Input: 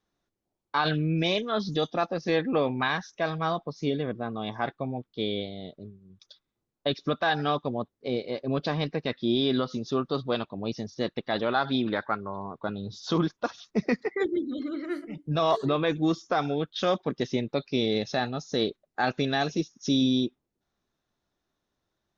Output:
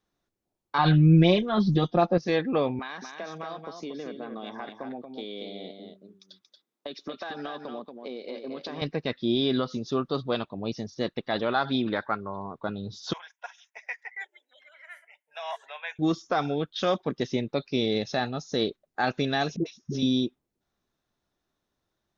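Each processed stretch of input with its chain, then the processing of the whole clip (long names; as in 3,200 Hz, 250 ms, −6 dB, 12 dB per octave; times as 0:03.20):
0:00.78–0:02.18: low-pass filter 5,500 Hz 24 dB per octave + spectral tilt −2 dB per octave + comb filter 5.6 ms, depth 94%
0:02.79–0:08.82: high-pass filter 210 Hz 24 dB per octave + downward compressor 12 to 1, threshold −32 dBFS + single-tap delay 231 ms −6 dB
0:13.13–0:15.99: high-pass filter 930 Hz 24 dB per octave + phaser with its sweep stopped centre 1,200 Hz, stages 6
0:19.56–0:20.03: low-pass filter 4,800 Hz + notch comb filter 280 Hz + all-pass dispersion highs, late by 96 ms, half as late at 530 Hz
whole clip: no processing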